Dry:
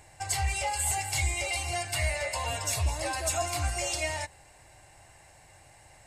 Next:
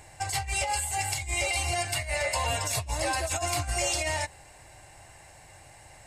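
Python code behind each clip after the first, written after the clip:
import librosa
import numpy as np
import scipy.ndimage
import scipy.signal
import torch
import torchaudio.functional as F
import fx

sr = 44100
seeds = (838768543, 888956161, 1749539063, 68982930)

y = fx.over_compress(x, sr, threshold_db=-31.0, ratio=-0.5)
y = F.gain(torch.from_numpy(y), 2.5).numpy()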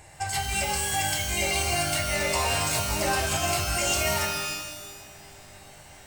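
y = fx.rev_shimmer(x, sr, seeds[0], rt60_s=1.3, semitones=12, shimmer_db=-2, drr_db=4.0)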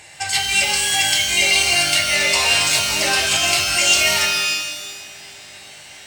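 y = fx.weighting(x, sr, curve='D')
y = F.gain(torch.from_numpy(y), 3.0).numpy()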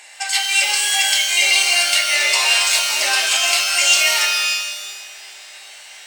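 y = scipy.signal.sosfilt(scipy.signal.butter(2, 720.0, 'highpass', fs=sr, output='sos'), x)
y = F.gain(torch.from_numpy(y), 1.0).numpy()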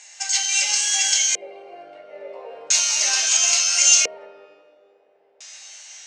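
y = fx.filter_lfo_lowpass(x, sr, shape='square', hz=0.37, low_hz=470.0, high_hz=6400.0, q=8.0)
y = F.gain(torch.from_numpy(y), -9.0).numpy()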